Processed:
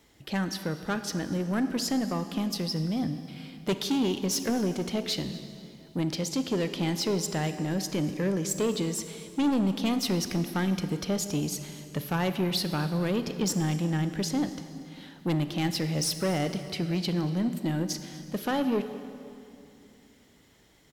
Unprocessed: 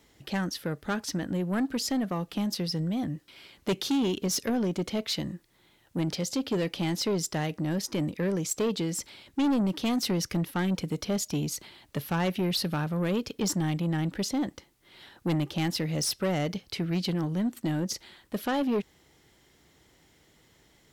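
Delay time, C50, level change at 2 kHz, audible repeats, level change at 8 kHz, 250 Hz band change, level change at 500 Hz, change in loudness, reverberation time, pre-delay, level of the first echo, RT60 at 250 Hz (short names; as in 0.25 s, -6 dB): 0.239 s, 10.0 dB, +0.5 dB, 1, +0.5 dB, +0.5 dB, +0.5 dB, +0.5 dB, 2.6 s, 26 ms, -21.0 dB, 3.3 s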